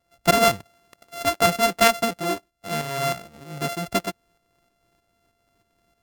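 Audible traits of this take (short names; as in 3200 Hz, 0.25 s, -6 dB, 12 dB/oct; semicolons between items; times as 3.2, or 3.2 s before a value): a buzz of ramps at a fixed pitch in blocks of 64 samples; tremolo saw up 3.2 Hz, depth 55%; Vorbis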